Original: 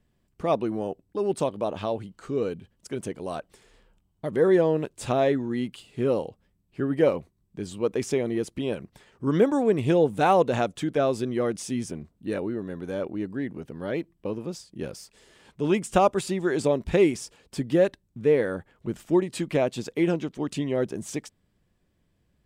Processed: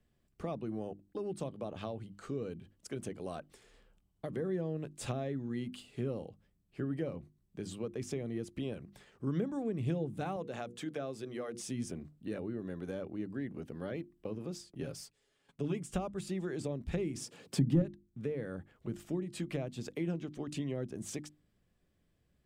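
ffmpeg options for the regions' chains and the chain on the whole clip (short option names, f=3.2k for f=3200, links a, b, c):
-filter_complex "[0:a]asettb=1/sr,asplit=3[a][b][c];[a]atrim=end=10.364[d];[b]atrim=start=10.36:end=11.61,asetpts=PTS-STARTPTS,afade=t=in:d=0.004:c=qsin,afade=t=out:st=1.246:d=0.004:c=qsin,highpass=f=290:p=1,bandreject=f=60:t=h:w=6,bandreject=f=120:t=h:w=6,bandreject=f=180:t=h:w=6,bandreject=f=240:t=h:w=6,bandreject=f=300:t=h:w=6,bandreject=f=360:t=h:w=6,bandreject=f=420:t=h:w=6,bandreject=f=480:t=h:w=6[e];[c]atrim=start=11.606[f];[d][e]acrossfade=d=0.004:c1=hsin:c2=qsin[g];[g][f]acrossfade=d=0.004:c1=qsin:c2=hsin,asettb=1/sr,asplit=3[h][i][j];[h]atrim=end=14.714[k];[i]atrim=start=14.71:end=15.94,asetpts=PTS-STARTPTS,afade=t=in:d=0.004:c=qsin,afade=t=out:st=1.226:d=0.004:c=qsin,agate=range=-16dB:threshold=-53dB:ratio=16:release=100:detection=peak,aecho=1:1:7.2:0.55,atrim=end_sample=54243[l];[j]atrim=start=15.936[m];[k][l]acrossfade=d=0.004:c1=hsin:c2=qsin[n];[n][m]acrossfade=d=0.004:c1=qsin:c2=hsin,asettb=1/sr,asplit=3[o][p][q];[o]atrim=end=17.164[r];[p]atrim=start=17.16:end=17.82,asetpts=PTS-STARTPTS,afade=t=in:d=0.004:c=qsin,afade=t=out:st=0.656:d=0.004:c=qsin,highpass=f=130:w=0.5412,highpass=f=130:w=1.3066,lowshelf=f=360:g=8,acontrast=66[s];[q]atrim=start=17.816[t];[r][s]acrossfade=d=0.004:c1=hsin:c2=qsin[u];[u][t]acrossfade=d=0.004:c1=qsin:c2=hsin,bandreject=f=940:w=10,acrossover=split=210[v][w];[w]acompressor=threshold=-34dB:ratio=6[x];[v][x]amix=inputs=2:normalize=0,bandreject=f=50:t=h:w=6,bandreject=f=100:t=h:w=6,bandreject=f=150:t=h:w=6,bandreject=f=200:t=h:w=6,bandreject=f=250:t=h:w=6,bandreject=f=300:t=h:w=6,bandreject=f=350:t=h:w=6,volume=-4.5dB"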